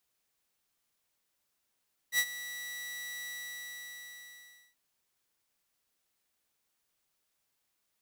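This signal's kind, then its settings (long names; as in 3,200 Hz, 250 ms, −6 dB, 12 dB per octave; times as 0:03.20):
note with an ADSR envelope saw 1,950 Hz, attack 67 ms, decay 60 ms, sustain −15.5 dB, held 1.14 s, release 1,490 ms −21 dBFS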